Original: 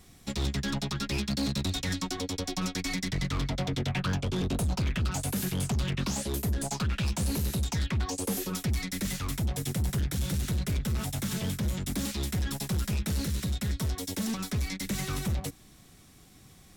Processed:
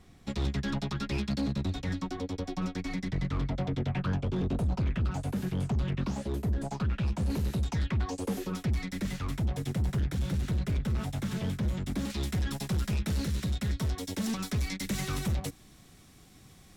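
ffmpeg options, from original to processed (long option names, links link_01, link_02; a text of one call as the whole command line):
ffmpeg -i in.wav -af "asetnsamples=nb_out_samples=441:pad=0,asendcmd='1.41 lowpass f 1100;7.3 lowpass f 2000;12.1 lowpass f 4400;14.24 lowpass f 9100',lowpass=frequency=2200:poles=1" out.wav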